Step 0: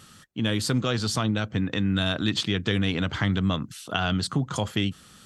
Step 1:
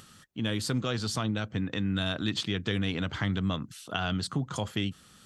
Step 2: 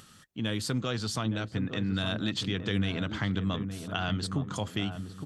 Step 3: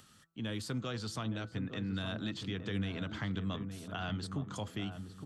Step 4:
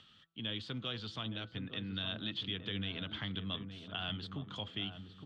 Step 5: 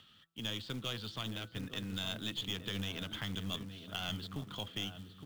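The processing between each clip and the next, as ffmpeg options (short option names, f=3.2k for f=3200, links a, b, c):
-af "acompressor=mode=upward:threshold=-45dB:ratio=2.5,volume=-5dB"
-filter_complex "[0:a]asplit=2[a][b];[b]adelay=866,lowpass=f=840:p=1,volume=-7dB,asplit=2[c][d];[d]adelay=866,lowpass=f=840:p=1,volume=0.38,asplit=2[e][f];[f]adelay=866,lowpass=f=840:p=1,volume=0.38,asplit=2[g][h];[h]adelay=866,lowpass=f=840:p=1,volume=0.38[i];[a][c][e][g][i]amix=inputs=5:normalize=0,volume=-1dB"
-filter_complex "[0:a]bandreject=f=165.5:t=h:w=4,bandreject=f=331:t=h:w=4,bandreject=f=496.5:t=h:w=4,bandreject=f=662:t=h:w=4,bandreject=f=827.5:t=h:w=4,bandreject=f=993:t=h:w=4,bandreject=f=1.1585k:t=h:w=4,bandreject=f=1.324k:t=h:w=4,bandreject=f=1.4895k:t=h:w=4,acrossover=split=210|1200|1900[a][b][c][d];[d]alimiter=level_in=4.5dB:limit=-24dB:level=0:latency=1:release=52,volume=-4.5dB[e];[a][b][c][e]amix=inputs=4:normalize=0,volume=-6.5dB"
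-af "lowpass=f=3.3k:t=q:w=4.6,volume=-5dB"
-af "acrusher=bits=4:mode=log:mix=0:aa=0.000001,aeval=exprs='0.0668*(cos(1*acos(clip(val(0)/0.0668,-1,1)))-cos(1*PI/2))+0.00841*(cos(4*acos(clip(val(0)/0.0668,-1,1)))-cos(4*PI/2))':c=same"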